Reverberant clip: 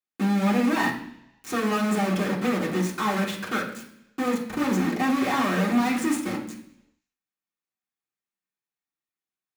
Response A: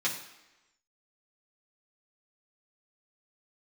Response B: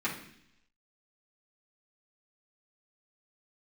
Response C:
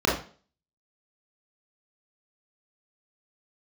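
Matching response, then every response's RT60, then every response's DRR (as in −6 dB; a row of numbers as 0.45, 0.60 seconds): B; 1.0, 0.70, 0.40 seconds; −6.0, −8.5, −6.0 decibels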